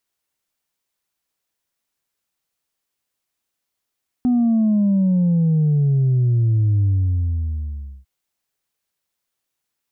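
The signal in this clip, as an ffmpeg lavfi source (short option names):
-f lavfi -i "aevalsrc='0.2*clip((3.8-t)/1.22,0,1)*tanh(1.12*sin(2*PI*250*3.8/log(65/250)*(exp(log(65/250)*t/3.8)-1)))/tanh(1.12)':d=3.8:s=44100"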